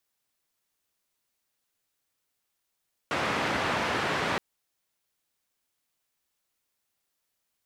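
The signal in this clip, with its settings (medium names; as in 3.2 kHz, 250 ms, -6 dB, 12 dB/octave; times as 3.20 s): noise band 100–1800 Hz, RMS -28.5 dBFS 1.27 s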